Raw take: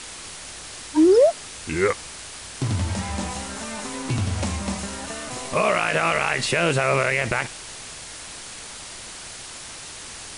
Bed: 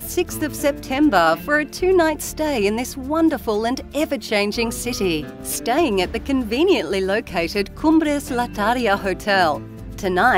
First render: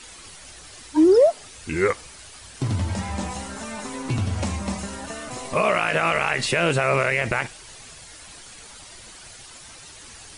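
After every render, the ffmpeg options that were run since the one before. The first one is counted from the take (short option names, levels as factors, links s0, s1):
-af "afftdn=nr=9:nf=-38"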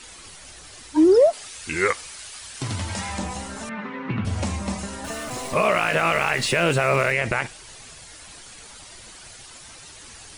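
-filter_complex "[0:a]asettb=1/sr,asplit=3[s0][s1][s2];[s0]atrim=end=1.334[s3];[s1]atrim=start=1.33:end=3.19,asetpts=PTS-STARTPTS,afade=t=in:d=0.004:c=qsin,afade=t=out:st=1.856:d=0.004:c=qsin,tiltshelf=f=770:g=-5.5[s4];[s2]atrim=start=3.186[s5];[s3][s4]acrossfade=d=0.004:c1=hsin:c2=qsin[s6];[s6][s5]acrossfade=d=0.004:c1=qsin:c2=hsin,asettb=1/sr,asplit=3[s7][s8][s9];[s7]atrim=end=3.694[s10];[s8]atrim=start=3.69:end=4.25,asetpts=PTS-STARTPTS,afade=t=in:d=0.004:c=qsin,afade=t=out:st=0.556:d=0.004:c=qsin,highpass=f=110:w=0.5412,highpass=f=110:w=1.3066,equalizer=f=130:t=q:w=4:g=-5,equalizer=f=190:t=q:w=4:g=10,equalizer=f=290:t=q:w=4:g=-4,equalizer=f=700:t=q:w=4:g=-7,equalizer=f=1300:t=q:w=4:g=4,equalizer=f=1900:t=q:w=4:g=6,lowpass=f=2900:w=0.5412,lowpass=f=2900:w=1.3066[s11];[s9]atrim=start=4.246[s12];[s10][s11]acrossfade=d=0.004:c1=hsin:c2=qsin[s13];[s13][s12]acrossfade=d=0.004:c1=qsin:c2=hsin,asettb=1/sr,asplit=3[s14][s15][s16];[s14]atrim=end=5.044[s17];[s15]atrim=start=5.04:end=7.12,asetpts=PTS-STARTPTS,afade=t=in:d=0.004:c=qsin,afade=t=out:st=2.076:d=0.004:c=qsin,aeval=exprs='val(0)+0.5*0.0168*sgn(val(0))':c=same[s18];[s16]atrim=start=7.116[s19];[s17][s18]acrossfade=d=0.004:c1=hsin:c2=qsin[s20];[s20][s19]acrossfade=d=0.004:c1=qsin:c2=hsin"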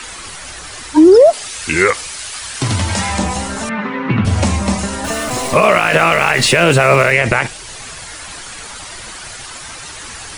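-filter_complex "[0:a]acrossover=split=210|990|1800[s0][s1][s2][s3];[s2]acompressor=mode=upward:threshold=0.00794:ratio=2.5[s4];[s0][s1][s4][s3]amix=inputs=4:normalize=0,alimiter=level_in=3.76:limit=0.891:release=50:level=0:latency=1"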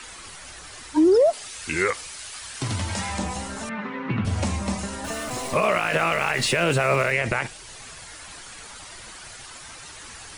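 -af "volume=0.299"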